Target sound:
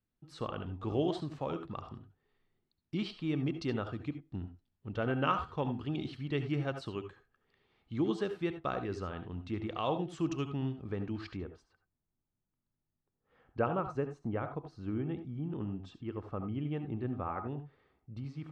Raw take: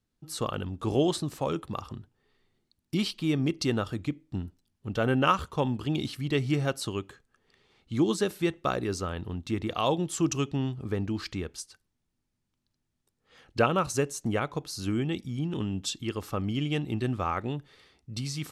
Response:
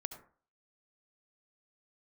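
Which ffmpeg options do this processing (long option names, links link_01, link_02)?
-filter_complex "[0:a]asetnsamples=nb_out_samples=441:pad=0,asendcmd='11.37 lowpass f 1400',lowpass=3200[link_01];[1:a]atrim=start_sample=2205,atrim=end_sample=4410[link_02];[link_01][link_02]afir=irnorm=-1:irlink=0,volume=-4.5dB"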